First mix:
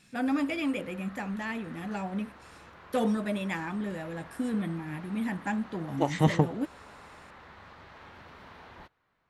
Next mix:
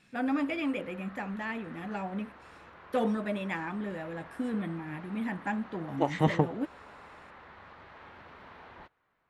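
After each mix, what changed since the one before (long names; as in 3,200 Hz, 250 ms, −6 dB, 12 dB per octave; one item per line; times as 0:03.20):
master: add bass and treble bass −4 dB, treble −10 dB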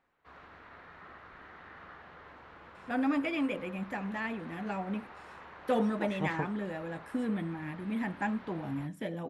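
first voice: entry +2.75 s
second voice −9.5 dB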